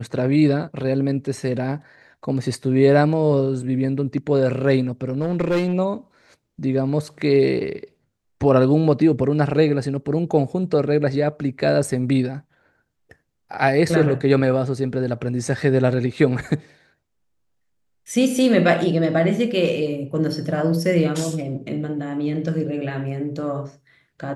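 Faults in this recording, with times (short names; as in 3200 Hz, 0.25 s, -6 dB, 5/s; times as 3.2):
5.18–5.74 clipped -16 dBFS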